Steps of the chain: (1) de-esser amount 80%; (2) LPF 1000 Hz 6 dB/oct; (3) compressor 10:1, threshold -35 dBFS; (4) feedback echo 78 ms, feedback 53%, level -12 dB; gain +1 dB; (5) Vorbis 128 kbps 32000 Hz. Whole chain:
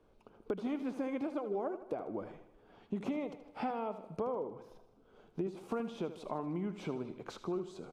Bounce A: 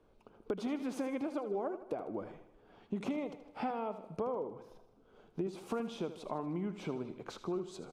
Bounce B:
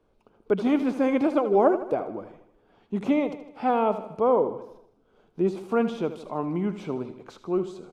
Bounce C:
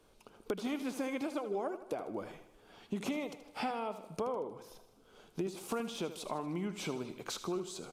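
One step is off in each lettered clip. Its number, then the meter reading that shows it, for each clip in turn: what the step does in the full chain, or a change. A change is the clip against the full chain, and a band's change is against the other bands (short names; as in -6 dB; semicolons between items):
1, 4 kHz band +2.5 dB; 3, crest factor change +3.0 dB; 2, 4 kHz band +10.5 dB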